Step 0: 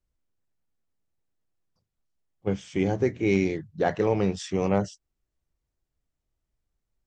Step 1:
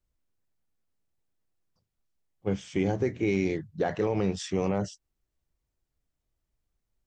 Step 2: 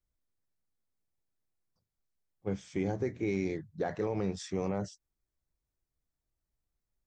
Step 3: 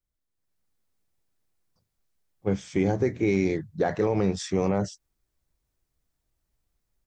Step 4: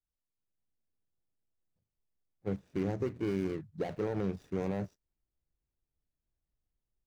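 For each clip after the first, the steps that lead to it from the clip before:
peak limiter -16.5 dBFS, peak gain reduction 6.5 dB
peaking EQ 2.9 kHz -8.5 dB 0.31 oct; trim -5.5 dB
level rider gain up to 10 dB; trim -1.5 dB
median filter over 41 samples; trim -8.5 dB

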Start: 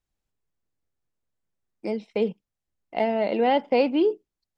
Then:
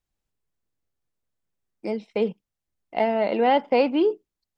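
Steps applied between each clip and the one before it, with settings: dynamic bell 1.2 kHz, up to +5 dB, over -36 dBFS, Q 1.1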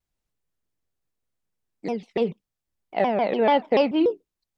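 vibrato with a chosen wave saw down 6.9 Hz, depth 250 cents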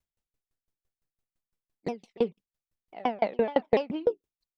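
in parallel at -10 dB: saturation -18.5 dBFS, distortion -12 dB; on the sum: sawtooth tremolo in dB decaying 5.9 Hz, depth 32 dB

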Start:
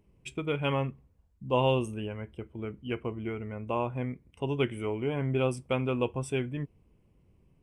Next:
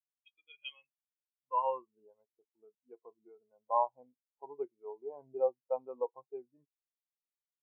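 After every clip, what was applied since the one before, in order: band-pass sweep 3.4 kHz -> 850 Hz, 0.81–2.01 s; spectral contrast expander 2.5:1; trim +5.5 dB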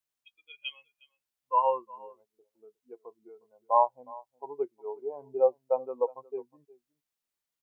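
echo from a far wall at 62 m, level -21 dB; trim +7 dB

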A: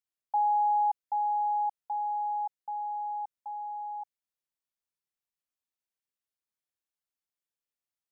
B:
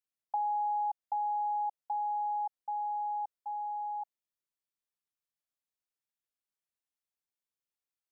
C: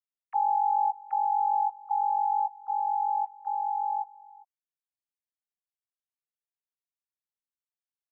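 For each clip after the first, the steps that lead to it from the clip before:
compression 4:1, threshold -32 dBFS, peak gain reduction 7 dB; dynamic bell 690 Hz, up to +6 dB, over -47 dBFS, Q 1.3; trim -4 dB
formants replaced by sine waves; delay 404 ms -21.5 dB; trim +6.5 dB

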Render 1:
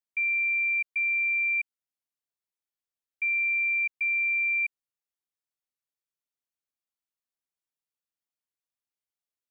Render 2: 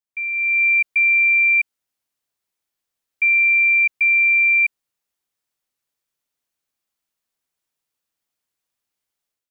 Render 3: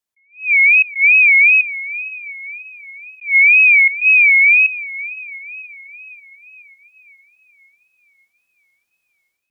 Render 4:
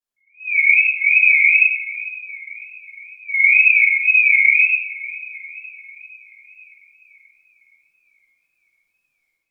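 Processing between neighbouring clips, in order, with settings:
level rider gain up to 11 dB
echo that smears into a reverb 576 ms, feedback 53%, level -15 dB; wow and flutter 140 cents; attacks held to a fixed rise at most 200 dB/s; trim +6 dB
flange 1 Hz, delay 6.5 ms, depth 8.4 ms, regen -38%; simulated room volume 190 m³, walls mixed, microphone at 3.2 m; trim -9 dB

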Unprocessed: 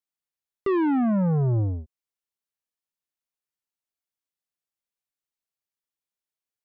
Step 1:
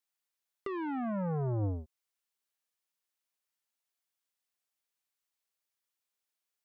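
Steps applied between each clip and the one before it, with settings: bass shelf 350 Hz -11.5 dB; compressor with a negative ratio -33 dBFS, ratio -1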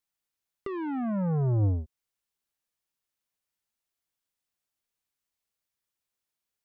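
bass shelf 240 Hz +10 dB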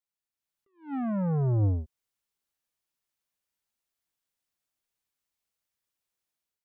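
level rider gain up to 8 dB; attacks held to a fixed rise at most 200 dB/s; trim -8 dB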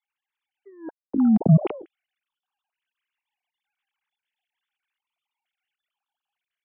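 formants replaced by sine waves; step-sequenced notch 2.2 Hz 560–2000 Hz; trim +7 dB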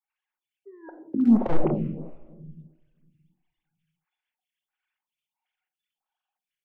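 one-sided wavefolder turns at -14 dBFS; simulated room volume 990 m³, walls mixed, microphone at 0.98 m; lamp-driven phase shifter 1.5 Hz

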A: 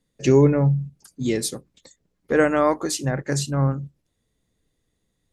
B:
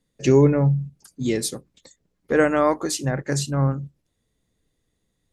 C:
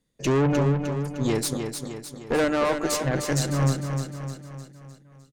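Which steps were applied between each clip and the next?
no audible change
valve stage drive 21 dB, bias 0.7; on a send: feedback delay 305 ms, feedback 52%, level -6.5 dB; on the sum: trim +2.5 dB

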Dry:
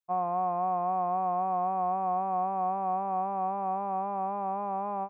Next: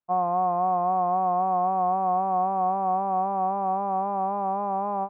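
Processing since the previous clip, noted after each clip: low-pass 1.6 kHz 12 dB/octave; trim +5.5 dB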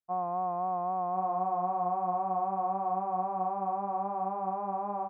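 delay 1053 ms -4.5 dB; trim -8 dB

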